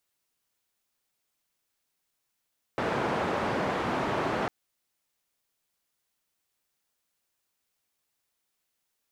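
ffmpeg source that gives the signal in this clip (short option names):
-f lavfi -i "anoisesrc=c=white:d=1.7:r=44100:seed=1,highpass=f=110,lowpass=f=1000,volume=-10.7dB"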